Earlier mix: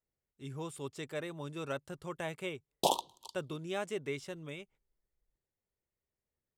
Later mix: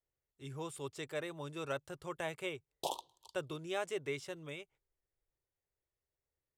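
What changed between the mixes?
background -9.0 dB; master: add bell 210 Hz -13.5 dB 0.51 oct

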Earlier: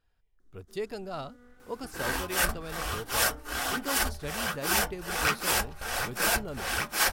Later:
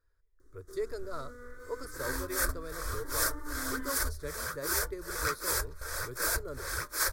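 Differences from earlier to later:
first sound +11.5 dB; second sound: send -9.5 dB; master: add fixed phaser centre 770 Hz, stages 6

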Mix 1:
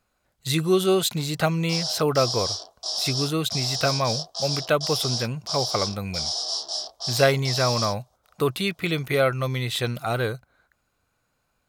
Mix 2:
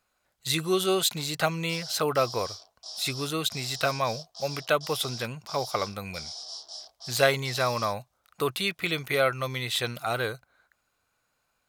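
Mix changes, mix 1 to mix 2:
background -11.5 dB; master: add low shelf 430 Hz -9.5 dB

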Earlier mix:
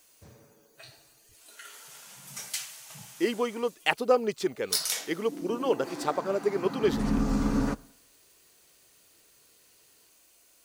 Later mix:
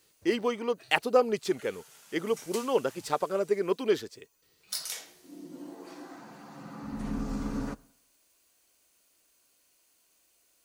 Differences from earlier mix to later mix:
speech: entry -2.95 s; background -7.0 dB

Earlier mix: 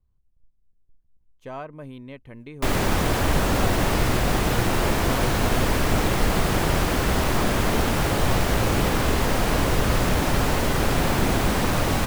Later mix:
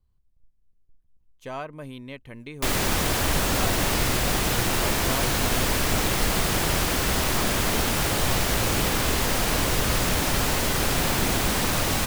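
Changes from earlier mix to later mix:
background -4.0 dB; master: add high shelf 2300 Hz +10 dB

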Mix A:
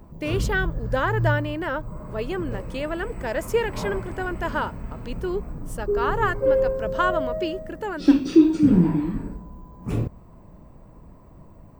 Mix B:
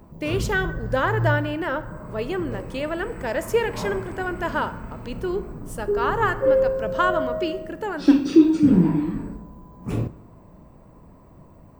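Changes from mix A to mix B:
background: add low shelf 62 Hz -8 dB; reverb: on, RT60 1.0 s

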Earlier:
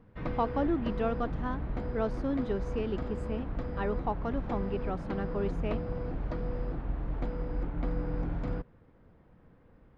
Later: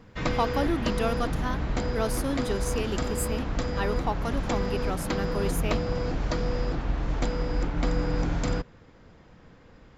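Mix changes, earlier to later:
background +5.5 dB; master: remove tape spacing loss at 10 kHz 39 dB

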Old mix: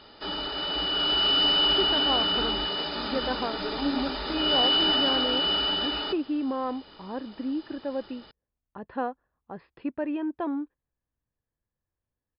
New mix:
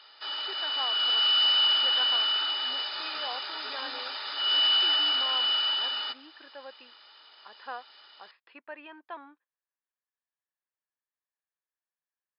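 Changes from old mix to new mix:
speech: entry -1.30 s; master: add HPF 1200 Hz 12 dB/oct

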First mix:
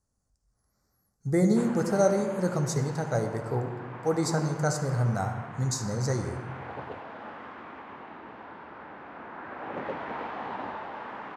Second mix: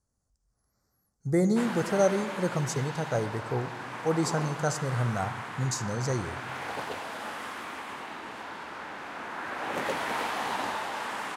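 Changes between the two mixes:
speech: send -7.5 dB; background: remove tape spacing loss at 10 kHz 43 dB

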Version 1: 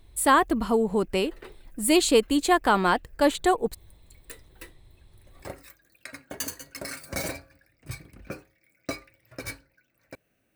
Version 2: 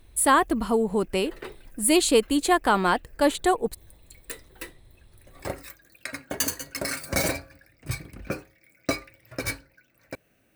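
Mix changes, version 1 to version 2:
speech: add bell 10000 Hz +6 dB 0.34 oct; background +6.5 dB

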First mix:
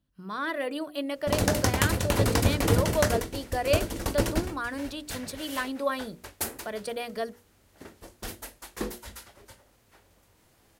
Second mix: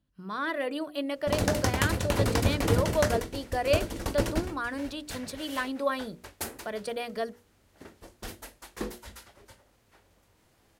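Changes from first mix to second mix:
background: send -6.5 dB; master: add high shelf 8700 Hz -5.5 dB

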